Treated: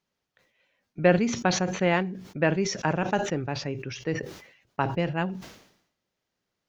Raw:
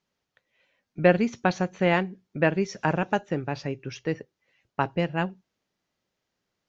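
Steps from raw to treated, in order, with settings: decay stretcher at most 78 dB/s; trim -1.5 dB

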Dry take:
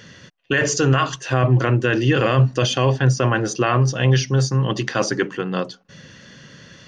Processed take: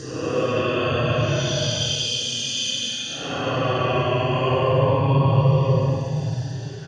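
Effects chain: doubling 21 ms -3 dB; Paulstretch 16×, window 0.05 s, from 2.56 s; trim -4.5 dB

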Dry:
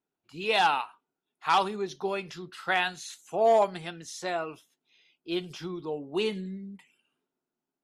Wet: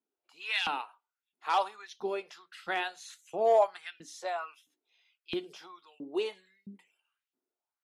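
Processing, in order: hum notches 60/120/180/240/300 Hz; LFO high-pass saw up 1.5 Hz 210–2900 Hz; trim -7 dB

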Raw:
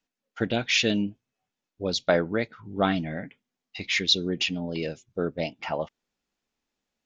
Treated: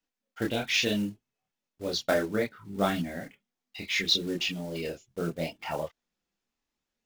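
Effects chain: block-companded coder 5-bit; chorus voices 4, 0.5 Hz, delay 27 ms, depth 3.1 ms

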